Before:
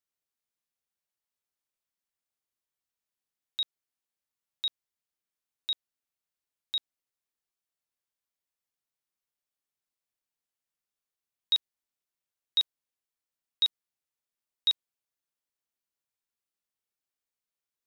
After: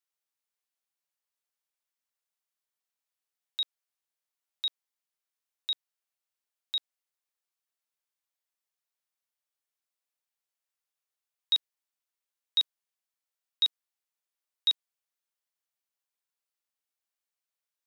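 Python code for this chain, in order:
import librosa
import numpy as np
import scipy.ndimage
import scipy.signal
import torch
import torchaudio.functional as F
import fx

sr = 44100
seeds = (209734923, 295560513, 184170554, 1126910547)

y = scipy.signal.sosfilt(scipy.signal.butter(2, 520.0, 'highpass', fs=sr, output='sos'), x)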